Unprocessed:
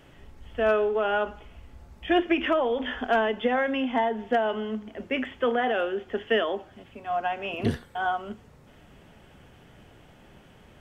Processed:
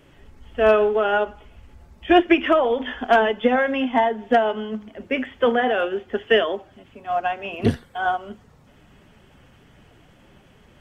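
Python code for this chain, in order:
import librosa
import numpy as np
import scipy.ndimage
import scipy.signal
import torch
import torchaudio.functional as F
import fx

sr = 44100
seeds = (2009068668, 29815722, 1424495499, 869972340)

y = fx.spec_quant(x, sr, step_db=15)
y = fx.upward_expand(y, sr, threshold_db=-34.0, expansion=1.5)
y = F.gain(torch.from_numpy(y), 8.5).numpy()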